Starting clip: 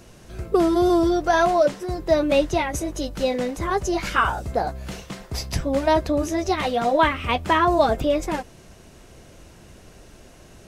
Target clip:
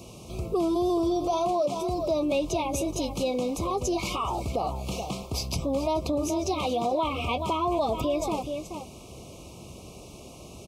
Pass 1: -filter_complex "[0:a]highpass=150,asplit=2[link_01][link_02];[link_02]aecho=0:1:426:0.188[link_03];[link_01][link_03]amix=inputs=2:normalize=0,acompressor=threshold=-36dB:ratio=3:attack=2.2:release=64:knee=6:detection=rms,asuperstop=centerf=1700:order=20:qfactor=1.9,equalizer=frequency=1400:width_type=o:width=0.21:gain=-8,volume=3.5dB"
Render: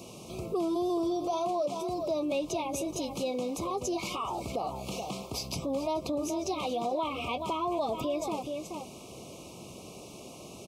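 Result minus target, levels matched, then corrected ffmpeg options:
downward compressor: peak gain reduction +4.5 dB; 125 Hz band −4.0 dB
-filter_complex "[0:a]highpass=63,asplit=2[link_01][link_02];[link_02]aecho=0:1:426:0.188[link_03];[link_01][link_03]amix=inputs=2:normalize=0,acompressor=threshold=-29dB:ratio=3:attack=2.2:release=64:knee=6:detection=rms,asuperstop=centerf=1700:order=20:qfactor=1.9,equalizer=frequency=1400:width_type=o:width=0.21:gain=-8,volume=3.5dB"

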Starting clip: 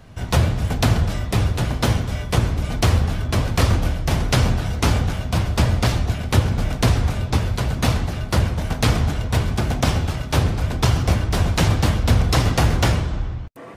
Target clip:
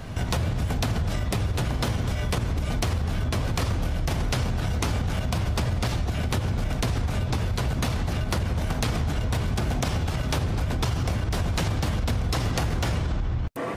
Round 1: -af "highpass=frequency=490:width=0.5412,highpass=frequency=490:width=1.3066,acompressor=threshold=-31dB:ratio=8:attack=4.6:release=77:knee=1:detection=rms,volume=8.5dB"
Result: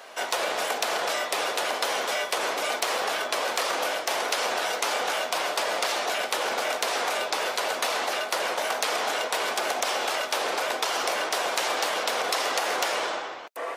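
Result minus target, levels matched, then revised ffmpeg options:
500 Hz band +5.0 dB
-af "acompressor=threshold=-31dB:ratio=8:attack=4.6:release=77:knee=1:detection=rms,volume=8.5dB"

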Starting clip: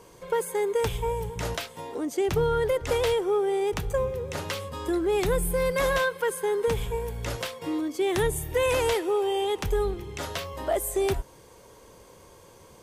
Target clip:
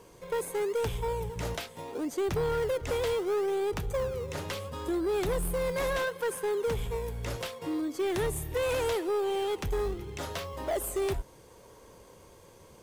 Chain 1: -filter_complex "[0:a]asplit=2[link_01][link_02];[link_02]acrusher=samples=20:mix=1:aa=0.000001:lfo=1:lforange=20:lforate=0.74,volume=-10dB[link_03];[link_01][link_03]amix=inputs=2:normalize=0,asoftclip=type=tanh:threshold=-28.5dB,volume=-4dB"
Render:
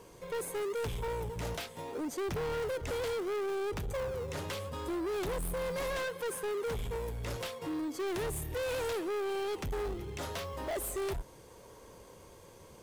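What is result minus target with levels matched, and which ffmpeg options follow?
soft clipping: distortion +8 dB
-filter_complex "[0:a]asplit=2[link_01][link_02];[link_02]acrusher=samples=20:mix=1:aa=0.000001:lfo=1:lforange=20:lforate=0.74,volume=-10dB[link_03];[link_01][link_03]amix=inputs=2:normalize=0,asoftclip=type=tanh:threshold=-20dB,volume=-4dB"

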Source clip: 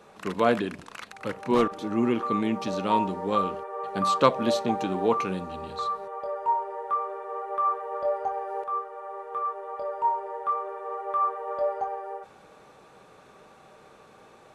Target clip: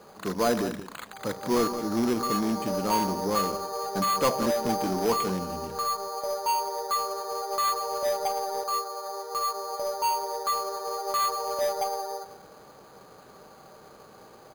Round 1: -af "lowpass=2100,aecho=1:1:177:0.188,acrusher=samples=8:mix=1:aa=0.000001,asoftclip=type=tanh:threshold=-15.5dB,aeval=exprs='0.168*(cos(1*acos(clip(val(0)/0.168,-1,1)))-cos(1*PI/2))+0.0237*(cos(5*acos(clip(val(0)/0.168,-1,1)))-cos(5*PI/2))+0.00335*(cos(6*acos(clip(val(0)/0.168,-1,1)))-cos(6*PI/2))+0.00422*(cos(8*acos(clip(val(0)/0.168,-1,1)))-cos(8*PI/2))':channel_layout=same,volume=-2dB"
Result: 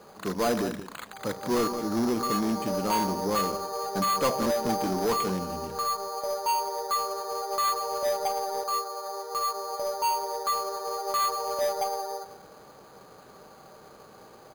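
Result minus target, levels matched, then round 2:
soft clipping: distortion +13 dB
-af "lowpass=2100,aecho=1:1:177:0.188,acrusher=samples=8:mix=1:aa=0.000001,asoftclip=type=tanh:threshold=-5.5dB,aeval=exprs='0.168*(cos(1*acos(clip(val(0)/0.168,-1,1)))-cos(1*PI/2))+0.0237*(cos(5*acos(clip(val(0)/0.168,-1,1)))-cos(5*PI/2))+0.00335*(cos(6*acos(clip(val(0)/0.168,-1,1)))-cos(6*PI/2))+0.00422*(cos(8*acos(clip(val(0)/0.168,-1,1)))-cos(8*PI/2))':channel_layout=same,volume=-2dB"

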